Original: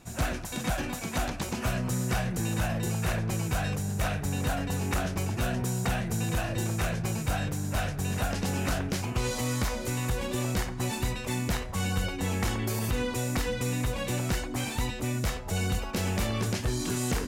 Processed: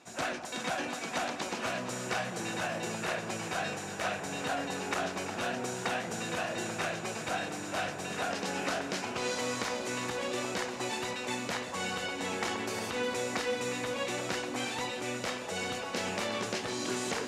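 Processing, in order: band-pass 340–6700 Hz; on a send: echo whose repeats swap between lows and highs 179 ms, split 1.1 kHz, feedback 90%, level -11 dB

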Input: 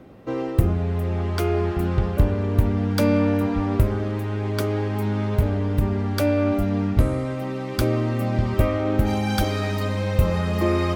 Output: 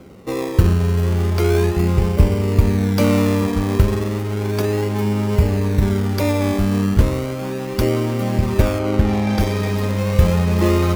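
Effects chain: rippled EQ curve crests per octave 0.82, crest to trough 6 dB; in parallel at -1 dB: decimation with a swept rate 24×, swing 60% 0.34 Hz; 8.78–9.39 s: on the sum: treble shelf 4.5 kHz -> 7.2 kHz -11 dB; trim -1 dB

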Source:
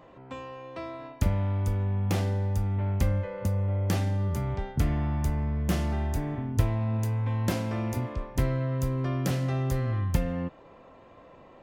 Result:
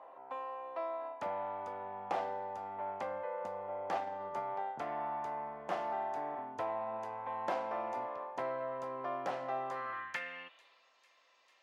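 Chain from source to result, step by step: frequency weighting A; 3.95–4.43 s: transient shaper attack +9 dB, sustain -7 dB; band-pass sweep 790 Hz -> 5.5 kHz, 9.60–10.89 s; on a send: feedback echo behind a high-pass 447 ms, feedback 85%, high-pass 4.1 kHz, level -19 dB; on the sum: trim +6 dB

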